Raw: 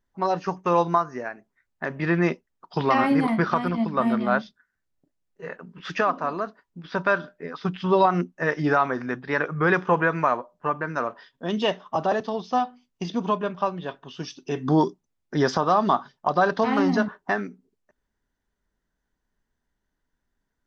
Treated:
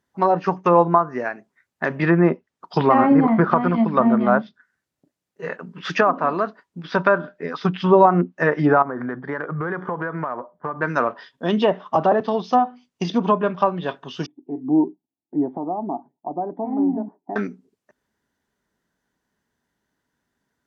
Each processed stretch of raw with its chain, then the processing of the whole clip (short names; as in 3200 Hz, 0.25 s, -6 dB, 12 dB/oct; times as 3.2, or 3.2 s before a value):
8.82–10.82 polynomial smoothing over 41 samples + compressor, threshold -29 dBFS
14.26–17.36 vocal tract filter u + low shelf 220 Hz -3.5 dB + small resonant body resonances 690/1900/3200 Hz, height 11 dB, ringing for 35 ms
whole clip: HPF 110 Hz; treble ducked by the level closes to 1200 Hz, closed at -18.5 dBFS; gain +6.5 dB